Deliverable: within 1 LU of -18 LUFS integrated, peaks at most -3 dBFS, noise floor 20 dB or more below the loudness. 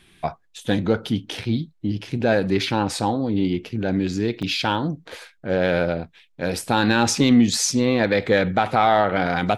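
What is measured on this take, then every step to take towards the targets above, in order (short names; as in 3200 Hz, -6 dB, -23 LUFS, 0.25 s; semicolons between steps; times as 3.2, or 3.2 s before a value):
dropouts 1; longest dropout 6.3 ms; loudness -21.5 LUFS; peak -4.5 dBFS; loudness target -18.0 LUFS
-> interpolate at 4.42, 6.3 ms; gain +3.5 dB; limiter -3 dBFS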